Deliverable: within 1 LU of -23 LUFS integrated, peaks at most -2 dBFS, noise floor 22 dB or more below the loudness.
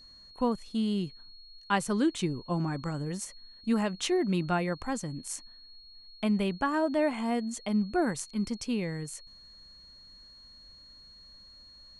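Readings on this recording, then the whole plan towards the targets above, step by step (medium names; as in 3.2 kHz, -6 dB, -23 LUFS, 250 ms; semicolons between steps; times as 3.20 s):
steady tone 4.3 kHz; tone level -51 dBFS; loudness -31.0 LUFS; peak level -14.0 dBFS; loudness target -23.0 LUFS
-> band-stop 4.3 kHz, Q 30; trim +8 dB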